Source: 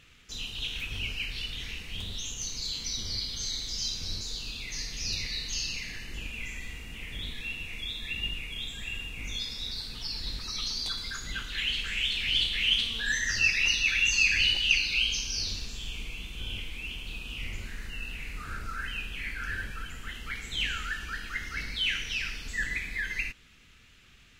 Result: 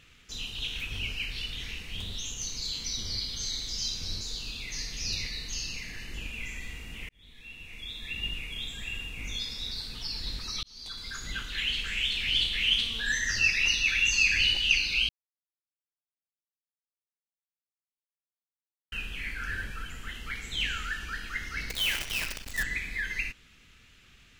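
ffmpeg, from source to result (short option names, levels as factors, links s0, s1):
-filter_complex "[0:a]asettb=1/sr,asplit=3[s0][s1][s2];[s0]atrim=end=5.294[s3];[s1]atrim=start=5.29:end=5.98,asetpts=PTS-STARTPTS,afade=t=in:d=0.004:c=qsin,afade=t=out:st=0.686:d=0.004:c=qsin,equalizer=f=3700:t=o:w=1.4:g=-4[s4];[s2]atrim=start=5.976[s5];[s3][s4]acrossfade=d=0.004:c1=hsin:c2=qsin[s6];[s6][s5]acrossfade=d=0.004:c1=qsin:c2=hsin,asettb=1/sr,asplit=3[s7][s8][s9];[s7]atrim=end=21.694[s10];[s8]atrim=start=21.69:end=22.63,asetpts=PTS-STARTPTS,afade=t=in:d=0.004:c=qsin,afade=t=out:st=0.936:d=0.004:c=qsin,acrusher=bits=6:dc=4:mix=0:aa=0.000001[s11];[s9]atrim=start=22.626[s12];[s10][s11]acrossfade=d=0.004:c1=hsin:c2=qsin[s13];[s13][s12]acrossfade=d=0.004:c1=qsin:c2=hsin,asplit=5[s14][s15][s16][s17][s18];[s14]atrim=end=7.09,asetpts=PTS-STARTPTS,afade=t=out:st=7.086:d=0.004:c=hsin[s19];[s15]atrim=start=7.09:end=10.63,asetpts=PTS-STARTPTS,afade=t=in:d=1.26,afade=t=out:st=3.536:d=0.004:c=hsin[s20];[s16]atrim=start=10.63:end=15.09,asetpts=PTS-STARTPTS,afade=t=in:d=0.62,afade=t=out:st=4.456:d=0.004:c=hsin[s21];[s17]atrim=start=15.09:end=18.92,asetpts=PTS-STARTPTS,volume=0[s22];[s18]atrim=start=18.92,asetpts=PTS-STARTPTS,afade=t=in:d=0.004:c=hsin[s23];[s19][s20][s21][s22][s23]concat=n=5:v=0:a=1"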